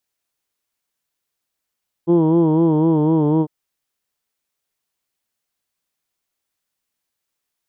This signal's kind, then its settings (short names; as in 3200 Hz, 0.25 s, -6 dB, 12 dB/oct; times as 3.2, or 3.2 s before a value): formant vowel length 1.40 s, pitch 166 Hz, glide -1.5 st, vibrato 4 Hz, vibrato depth 0.8 st, F1 370 Hz, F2 950 Hz, F3 3200 Hz